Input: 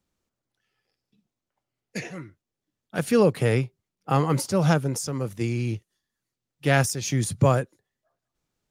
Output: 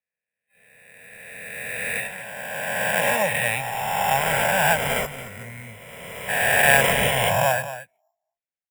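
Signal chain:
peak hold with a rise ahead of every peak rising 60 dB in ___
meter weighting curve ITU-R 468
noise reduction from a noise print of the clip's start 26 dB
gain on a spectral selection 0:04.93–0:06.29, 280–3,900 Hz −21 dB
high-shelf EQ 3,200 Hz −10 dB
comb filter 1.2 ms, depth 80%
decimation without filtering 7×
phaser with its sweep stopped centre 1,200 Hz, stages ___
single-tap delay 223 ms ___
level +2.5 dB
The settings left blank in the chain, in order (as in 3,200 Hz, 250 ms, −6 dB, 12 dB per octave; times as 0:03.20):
2.61 s, 6, −12.5 dB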